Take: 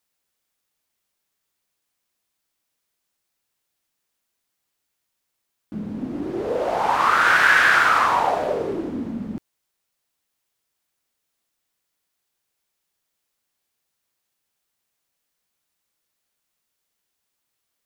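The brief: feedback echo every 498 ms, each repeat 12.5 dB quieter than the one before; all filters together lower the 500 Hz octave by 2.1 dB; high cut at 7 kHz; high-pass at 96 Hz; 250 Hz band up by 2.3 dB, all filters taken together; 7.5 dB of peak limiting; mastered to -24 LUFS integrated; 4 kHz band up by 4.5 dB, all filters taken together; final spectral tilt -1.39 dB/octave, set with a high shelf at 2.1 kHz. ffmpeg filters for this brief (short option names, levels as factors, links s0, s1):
-af "highpass=96,lowpass=7000,equalizer=f=250:t=o:g=4,equalizer=f=500:t=o:g=-4,highshelf=f=2100:g=3.5,equalizer=f=4000:t=o:g=3,alimiter=limit=0.316:level=0:latency=1,aecho=1:1:498|996|1494:0.237|0.0569|0.0137,volume=0.708"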